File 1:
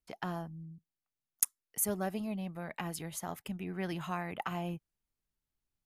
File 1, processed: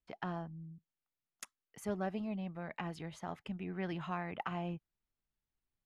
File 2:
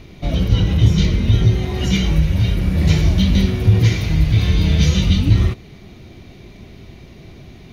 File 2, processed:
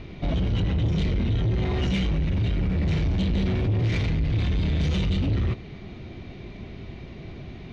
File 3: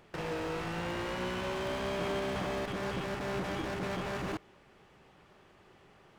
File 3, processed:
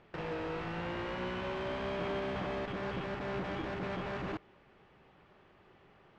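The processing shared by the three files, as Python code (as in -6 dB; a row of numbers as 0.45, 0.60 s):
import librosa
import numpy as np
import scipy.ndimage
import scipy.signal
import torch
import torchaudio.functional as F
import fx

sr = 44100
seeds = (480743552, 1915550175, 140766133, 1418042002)

p1 = scipy.signal.sosfilt(scipy.signal.butter(2, 3500.0, 'lowpass', fs=sr, output='sos'), x)
p2 = fx.over_compress(p1, sr, threshold_db=-20.0, ratio=-1.0)
p3 = p1 + (p2 * librosa.db_to_amplitude(-3.0))
p4 = 10.0 ** (-13.0 / 20.0) * np.tanh(p3 / 10.0 ** (-13.0 / 20.0))
y = p4 * librosa.db_to_amplitude(-6.5)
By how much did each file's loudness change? -4.0, -9.0, -2.0 LU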